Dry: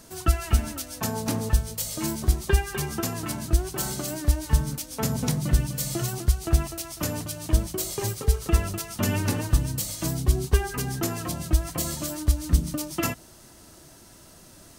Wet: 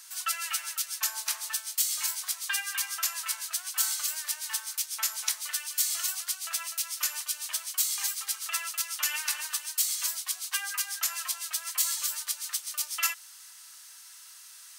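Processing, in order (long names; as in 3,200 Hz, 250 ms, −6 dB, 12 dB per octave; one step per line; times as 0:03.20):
Bessel high-pass filter 1,800 Hz, order 6
level +4 dB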